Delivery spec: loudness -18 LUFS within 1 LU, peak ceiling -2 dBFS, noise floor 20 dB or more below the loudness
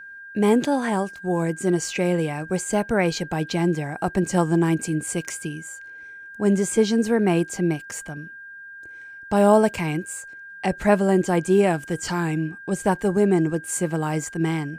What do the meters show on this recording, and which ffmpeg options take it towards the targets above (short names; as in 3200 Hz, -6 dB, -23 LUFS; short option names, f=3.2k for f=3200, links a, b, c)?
steady tone 1600 Hz; tone level -38 dBFS; loudness -22.5 LUFS; peak -5.0 dBFS; loudness target -18.0 LUFS
-> -af "bandreject=f=1.6k:w=30"
-af "volume=4.5dB,alimiter=limit=-2dB:level=0:latency=1"